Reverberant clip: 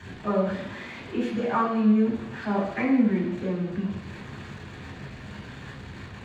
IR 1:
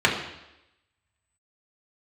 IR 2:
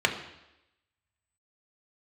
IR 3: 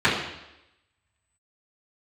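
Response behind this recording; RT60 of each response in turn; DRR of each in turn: 3; 0.90, 0.90, 0.90 s; -3.0, 2.5, -12.5 dB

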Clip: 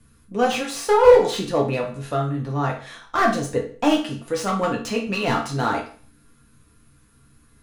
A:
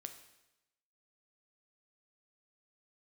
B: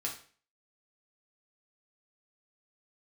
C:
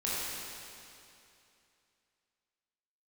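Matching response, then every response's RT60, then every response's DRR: B; 0.95, 0.45, 2.7 s; 6.5, -2.5, -8.5 dB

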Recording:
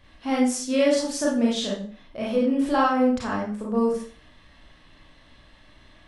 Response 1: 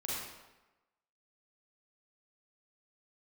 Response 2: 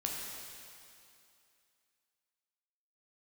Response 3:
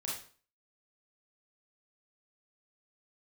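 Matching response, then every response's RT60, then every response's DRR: 3; 1.1, 2.6, 0.45 s; -7.0, -2.0, -5.0 dB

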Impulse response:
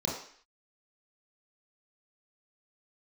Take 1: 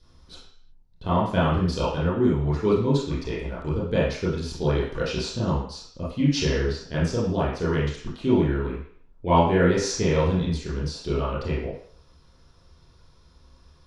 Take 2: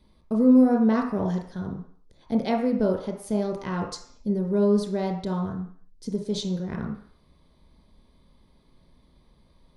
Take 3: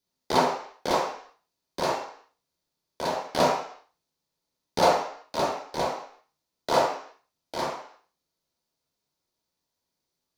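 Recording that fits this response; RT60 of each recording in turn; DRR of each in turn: 3; 0.55, 0.55, 0.55 s; -9.0, 2.0, -4.5 dB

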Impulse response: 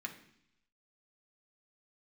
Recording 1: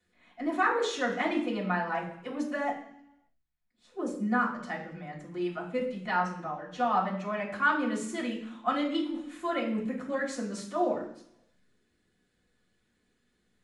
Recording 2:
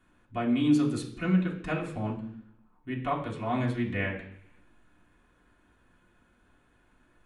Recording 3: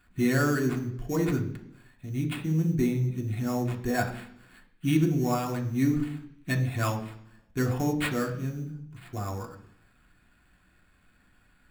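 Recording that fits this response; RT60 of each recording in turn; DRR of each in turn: 3; 0.70, 0.70, 0.70 s; -14.5, -5.0, 1.0 dB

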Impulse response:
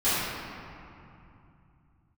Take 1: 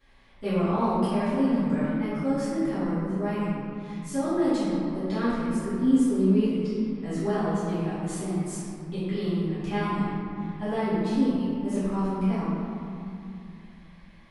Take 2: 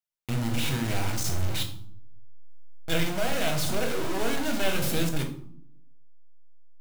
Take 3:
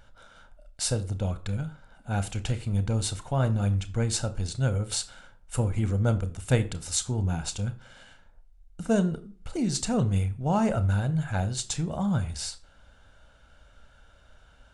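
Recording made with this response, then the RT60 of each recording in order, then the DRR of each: 1; 2.7, 0.65, 0.40 s; -16.5, 2.5, 11.0 dB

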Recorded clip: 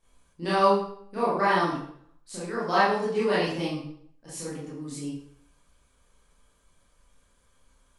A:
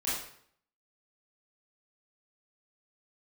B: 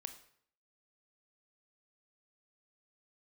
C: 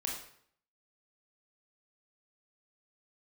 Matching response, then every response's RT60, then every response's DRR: A; 0.60, 0.60, 0.60 s; -10.5, 8.0, -2.0 dB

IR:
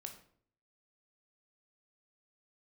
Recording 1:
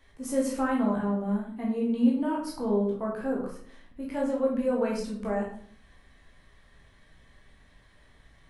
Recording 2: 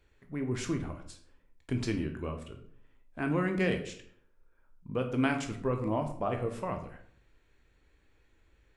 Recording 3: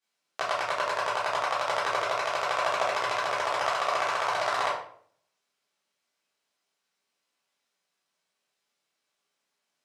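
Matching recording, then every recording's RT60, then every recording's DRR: 2; 0.55, 0.55, 0.55 s; -3.5, 4.5, -10.5 dB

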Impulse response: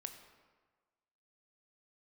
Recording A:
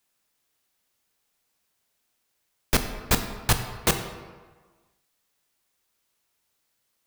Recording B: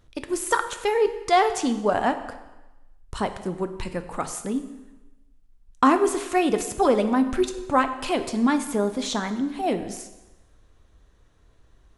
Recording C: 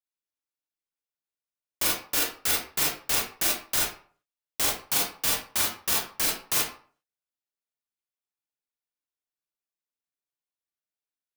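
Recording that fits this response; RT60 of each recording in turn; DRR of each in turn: A; 1.4, 1.1, 0.45 s; 6.5, 8.5, -3.5 dB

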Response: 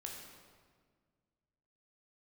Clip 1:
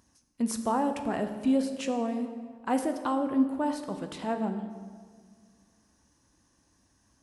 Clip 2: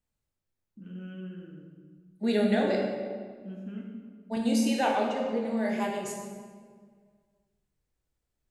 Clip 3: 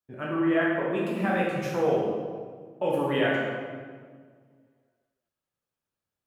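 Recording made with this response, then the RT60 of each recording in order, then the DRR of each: 2; 1.7, 1.7, 1.7 s; 6.5, -0.5, -5.0 dB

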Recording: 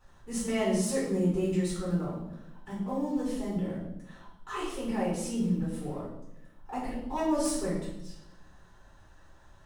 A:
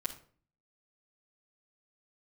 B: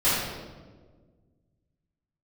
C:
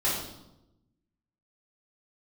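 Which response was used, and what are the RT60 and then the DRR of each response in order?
C; not exponential, 1.5 s, 0.90 s; -5.5, -14.0, -8.5 dB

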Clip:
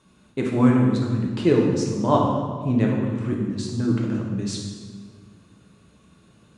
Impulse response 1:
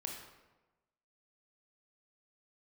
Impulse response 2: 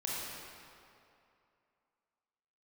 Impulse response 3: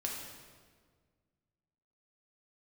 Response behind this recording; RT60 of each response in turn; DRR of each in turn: 3; 1.1, 2.6, 1.7 s; 0.5, -6.0, -2.0 dB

